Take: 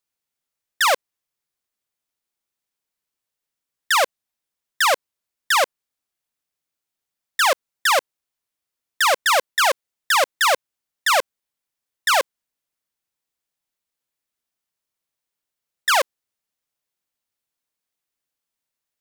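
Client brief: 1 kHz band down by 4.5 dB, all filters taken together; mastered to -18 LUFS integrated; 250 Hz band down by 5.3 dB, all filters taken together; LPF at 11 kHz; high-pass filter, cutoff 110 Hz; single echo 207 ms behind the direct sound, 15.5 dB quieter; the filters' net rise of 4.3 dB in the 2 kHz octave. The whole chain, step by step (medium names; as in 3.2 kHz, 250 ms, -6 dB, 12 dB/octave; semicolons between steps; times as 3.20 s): high-pass 110 Hz; low-pass 11 kHz; peaking EQ 250 Hz -7.5 dB; peaking EQ 1 kHz -8.5 dB; peaking EQ 2 kHz +8.5 dB; delay 207 ms -15.5 dB; trim +0.5 dB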